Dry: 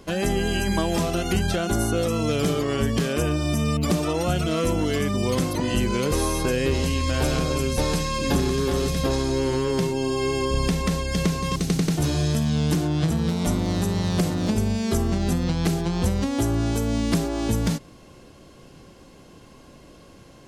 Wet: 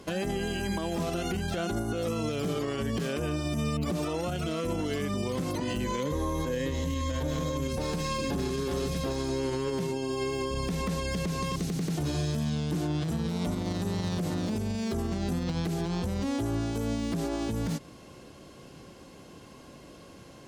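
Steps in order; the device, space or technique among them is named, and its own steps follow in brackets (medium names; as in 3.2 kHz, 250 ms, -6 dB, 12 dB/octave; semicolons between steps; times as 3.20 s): 5.84–7.68 s: rippled EQ curve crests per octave 1.1, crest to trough 10 dB; podcast mastering chain (high-pass 77 Hz 6 dB/octave; de-esser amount 75%; compression 4:1, threshold -25 dBFS, peak gain reduction 7 dB; peak limiter -21.5 dBFS, peak gain reduction 7 dB; MP3 128 kbps 44.1 kHz)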